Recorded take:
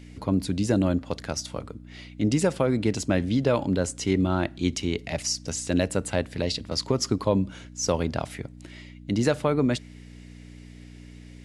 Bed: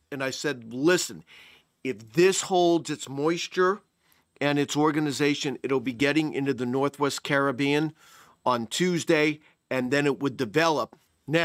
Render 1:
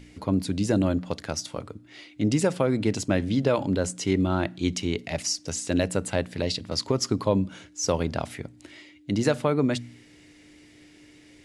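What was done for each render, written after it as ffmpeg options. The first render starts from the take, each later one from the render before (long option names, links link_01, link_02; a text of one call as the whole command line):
ffmpeg -i in.wav -af "bandreject=frequency=60:width_type=h:width=4,bandreject=frequency=120:width_type=h:width=4,bandreject=frequency=180:width_type=h:width=4,bandreject=frequency=240:width_type=h:width=4" out.wav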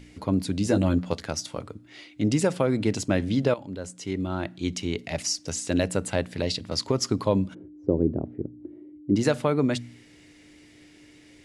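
ffmpeg -i in.wav -filter_complex "[0:a]asettb=1/sr,asplit=3[link_01][link_02][link_03];[link_01]atrim=end=0.654[link_04];[link_02]atrim=start=0.65:end=1.24,asetpts=PTS-STARTPTS,afade=type=in:duration=0.004:curve=qsin,afade=type=out:start_time=0.586:duration=0.004:curve=qsin,asplit=2[link_05][link_06];[link_06]adelay=12,volume=-5dB[link_07];[link_05][link_07]amix=inputs=2:normalize=0,atrim=end_sample=26019[link_08];[link_03]atrim=start=1.236[link_09];[link_04][link_08]acrossfade=duration=0.004:curve1=hsin:curve2=qsin[link_10];[link_10][link_09]acrossfade=duration=0.004:curve1=qsin:curve2=hsin,asplit=3[link_11][link_12][link_13];[link_11]afade=type=out:start_time=7.53:duration=0.02[link_14];[link_12]lowpass=frequency=350:width_type=q:width=3.2,afade=type=in:start_time=7.53:duration=0.02,afade=type=out:start_time=9.15:duration=0.02[link_15];[link_13]afade=type=in:start_time=9.15:duration=0.02[link_16];[link_14][link_15][link_16]amix=inputs=3:normalize=0,asplit=2[link_17][link_18];[link_17]atrim=end=3.54,asetpts=PTS-STARTPTS,afade=type=out:start_time=3.536:duration=0.004:curve=hsin:silence=0.199526[link_19];[link_18]atrim=start=3.54,asetpts=PTS-STARTPTS,afade=type=in:duration=1.7:silence=0.199526[link_20];[link_19][link_20]concat=n=2:v=0:a=1" out.wav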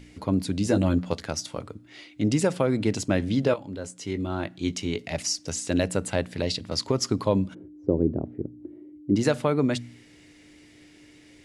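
ffmpeg -i in.wav -filter_complex "[0:a]asettb=1/sr,asplit=3[link_01][link_02][link_03];[link_01]atrim=end=3.424[link_04];[link_02]atrim=start=3.42:end=5.09,asetpts=PTS-STARTPTS,afade=type=in:duration=0.004:curve=qsin,afade=type=out:start_time=1.666:duration=0.004:curve=qsin,asplit=2[link_05][link_06];[link_06]adelay=19,volume=-10.5dB[link_07];[link_05][link_07]amix=inputs=2:normalize=0,atrim=end_sample=73647[link_08];[link_03]atrim=start=5.086[link_09];[link_04][link_08]acrossfade=duration=0.004:curve1=hsin:curve2=qsin[link_10];[link_10][link_09]acrossfade=duration=0.004:curve1=qsin:curve2=hsin" out.wav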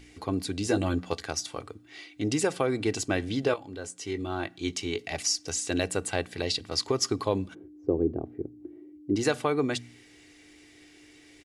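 ffmpeg -i in.wav -af "lowshelf=frequency=440:gain=-6.5,aecho=1:1:2.6:0.46" out.wav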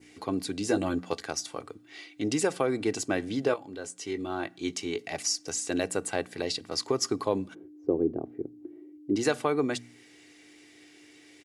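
ffmpeg -i in.wav -af "highpass=150,adynamicequalizer=threshold=0.00355:dfrequency=3300:dqfactor=1.1:tfrequency=3300:tqfactor=1.1:attack=5:release=100:ratio=0.375:range=2.5:mode=cutabove:tftype=bell" out.wav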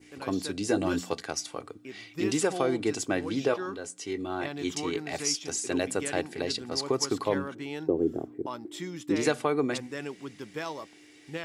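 ffmpeg -i in.wav -i bed.wav -filter_complex "[1:a]volume=-13.5dB[link_01];[0:a][link_01]amix=inputs=2:normalize=0" out.wav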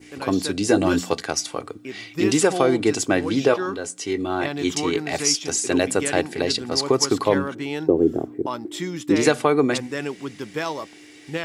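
ffmpeg -i in.wav -af "volume=8.5dB,alimiter=limit=-3dB:level=0:latency=1" out.wav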